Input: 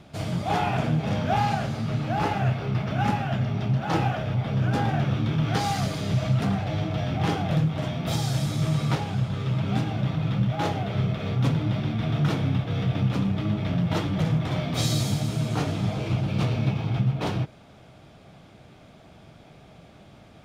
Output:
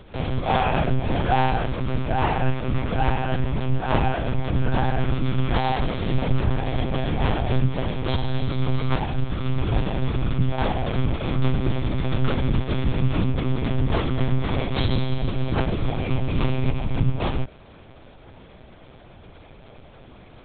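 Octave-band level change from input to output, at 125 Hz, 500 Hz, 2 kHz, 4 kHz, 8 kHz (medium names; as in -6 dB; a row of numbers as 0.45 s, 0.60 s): 0.0 dB, +4.0 dB, +3.0 dB, +0.5 dB, under -35 dB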